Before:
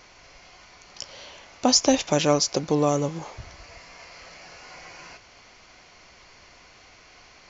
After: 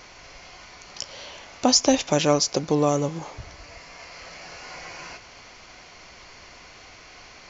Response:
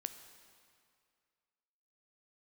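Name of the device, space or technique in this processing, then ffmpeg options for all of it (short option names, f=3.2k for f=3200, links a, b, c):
ducked reverb: -filter_complex "[0:a]asplit=3[a][b][c];[1:a]atrim=start_sample=2205[d];[b][d]afir=irnorm=-1:irlink=0[e];[c]apad=whole_len=330504[f];[e][f]sidechaincompress=threshold=-37dB:ratio=8:attack=35:release=1200,volume=0.5dB[g];[a][g]amix=inputs=2:normalize=0"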